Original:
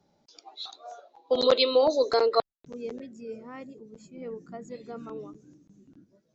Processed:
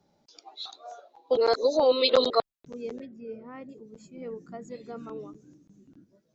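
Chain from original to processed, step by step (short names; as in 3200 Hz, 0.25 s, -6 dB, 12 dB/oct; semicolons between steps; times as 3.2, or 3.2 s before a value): 1.37–2.3 reverse; 3.05–3.69 air absorption 260 m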